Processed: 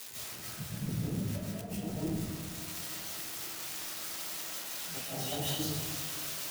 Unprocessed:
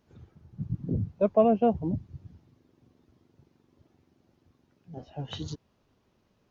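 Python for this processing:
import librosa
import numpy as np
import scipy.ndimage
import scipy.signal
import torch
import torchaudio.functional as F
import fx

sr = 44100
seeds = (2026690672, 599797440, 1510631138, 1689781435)

y = x + 0.5 * 10.0 ** (-24.0 / 20.0) * np.diff(np.sign(x), prepend=np.sign(x[:1]))
y = fx.low_shelf(y, sr, hz=70.0, db=-9.0)
y = fx.over_compress(y, sr, threshold_db=-31.0, ratio=-0.5)
y = 10.0 ** (-23.0 / 20.0) * np.tanh(y / 10.0 ** (-23.0 / 20.0))
y = fx.echo_feedback(y, sr, ms=284, feedback_pct=59, wet_db=-13.0)
y = fx.rev_freeverb(y, sr, rt60_s=1.3, hf_ratio=0.45, predelay_ms=110, drr_db=-8.5)
y = y * 10.0 ** (-8.0 / 20.0)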